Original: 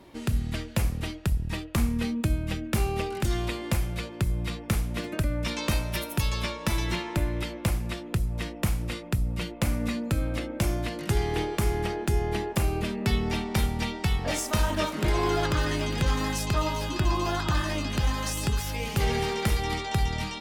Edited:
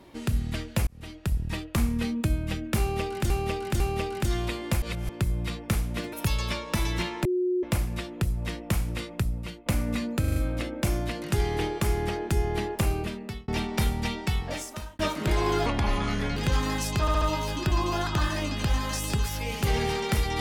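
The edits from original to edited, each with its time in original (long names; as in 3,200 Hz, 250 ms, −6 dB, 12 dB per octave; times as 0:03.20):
0:00.87–0:01.37: fade in
0:02.80–0:03.30: repeat, 3 plays
0:03.82–0:04.09: reverse
0:05.13–0:06.06: remove
0:07.18–0:07.56: beep over 362 Hz −22.5 dBFS
0:09.10–0:09.59: fade out, to −12.5 dB
0:10.13: stutter 0.04 s, 5 plays
0:12.68–0:13.25: fade out
0:13.98–0:14.76: fade out
0:15.43–0:15.91: play speed 68%
0:16.55: stutter 0.07 s, 4 plays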